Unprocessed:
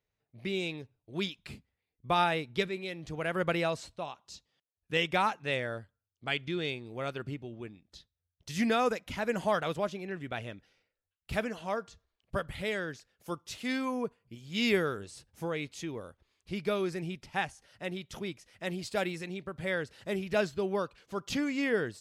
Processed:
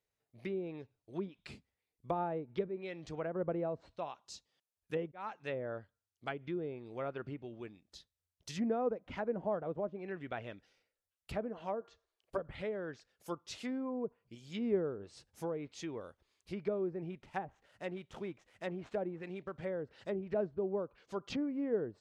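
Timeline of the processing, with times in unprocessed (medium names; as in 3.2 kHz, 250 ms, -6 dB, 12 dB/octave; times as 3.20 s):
5.12–5.60 s: fade in
11.81–12.38 s: resonant low shelf 270 Hz -9 dB, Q 1.5
17.11–19.64 s: median filter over 9 samples
whole clip: treble shelf 2.2 kHz -5.5 dB; low-pass that closes with the level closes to 600 Hz, closed at -29.5 dBFS; tone controls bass -6 dB, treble +7 dB; trim -1.5 dB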